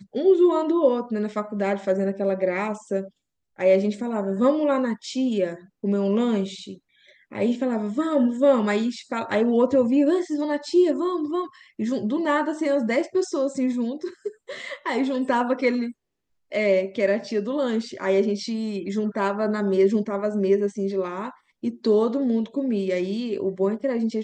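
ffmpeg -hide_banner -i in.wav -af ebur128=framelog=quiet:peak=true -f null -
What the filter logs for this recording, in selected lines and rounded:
Integrated loudness:
  I:         -23.6 LUFS
  Threshold: -33.8 LUFS
Loudness range:
  LRA:         3.5 LU
  Threshold: -44.1 LUFS
  LRA low:   -25.4 LUFS
  LRA high:  -21.9 LUFS
True peak:
  Peak:       -7.4 dBFS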